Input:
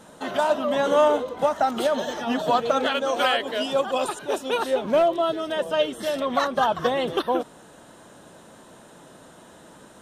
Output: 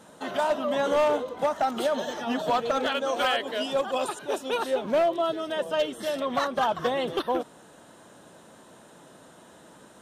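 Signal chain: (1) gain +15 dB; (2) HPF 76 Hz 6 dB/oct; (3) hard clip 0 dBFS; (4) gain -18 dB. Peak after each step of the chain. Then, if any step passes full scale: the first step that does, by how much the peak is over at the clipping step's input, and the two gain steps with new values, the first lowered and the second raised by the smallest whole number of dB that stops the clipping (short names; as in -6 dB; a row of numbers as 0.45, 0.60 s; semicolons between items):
+6.0, +6.5, 0.0, -18.0 dBFS; step 1, 6.5 dB; step 1 +8 dB, step 4 -11 dB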